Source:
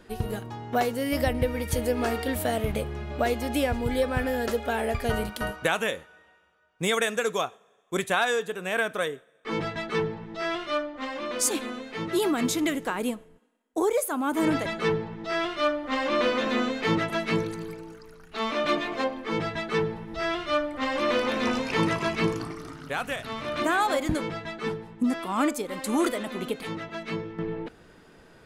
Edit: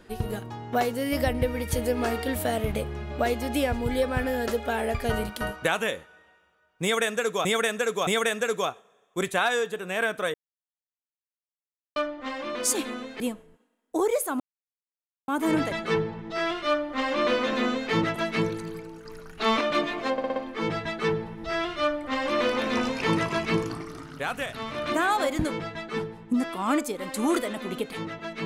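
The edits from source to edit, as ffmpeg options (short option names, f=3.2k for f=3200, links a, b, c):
-filter_complex "[0:a]asplit=13[a][b][c][d][e][f][g][h][i][j][k][l][m];[a]atrim=end=7.452[n];[b]atrim=start=6.828:end=7.452[o];[c]atrim=start=6.828:end=9.1,asetpts=PTS-STARTPTS,afade=t=out:st=2.268:d=0.004:c=hsin[p];[d]atrim=start=9.1:end=10.72,asetpts=PTS-STARTPTS,volume=0[q];[e]atrim=start=10.72:end=11.962,asetpts=PTS-STARTPTS,afade=t=in:d=0.004:c=hsin[r];[f]atrim=start=13.018:end=14.22,asetpts=PTS-STARTPTS,afade=t=out:st=1.198:d=0.004:c=hsin,apad=pad_dur=0.88[s];[g]atrim=start=14.22:end=17.992,asetpts=PTS-STARTPTS,afade=t=in:d=0.004:c=hsin[t];[h]atrim=start=17.988:end=18.552,asetpts=PTS-STARTPTS,volume=6dB[u];[i]atrim=start=18.548:end=19.122[v];[j]atrim=start=19.058:end=19.122[w];[k]atrim=start=19.058:end=19.122[x];[l]atrim=start=19.058:end=19.122[y];[m]atrim=start=19.058[z];[n][o]acrossfade=d=0.004:c1=hsin:c2=hsin[aa];[p][q][r]concat=n=3:v=0:a=1[ab];[aa][ab]acrossfade=d=0.004:c1=hsin:c2=hsin[ac];[s][t]concat=n=2:v=0:a=1[ad];[ac][ad]acrossfade=d=0.004:c1=hsin:c2=hsin[ae];[ae][u]acrossfade=d=0.004:c1=hsin:c2=hsin[af];[af][v]acrossfade=d=0.004:c1=hsin:c2=hsin[ag];[ag][w]acrossfade=d=0.004:c1=hsin:c2=hsin[ah];[ah][x]acrossfade=d=0.004:c1=hsin:c2=hsin[ai];[ai][y]acrossfade=d=0.004:c1=hsin:c2=hsin[aj];[aj][z]acrossfade=d=0.004:c1=hsin:c2=hsin"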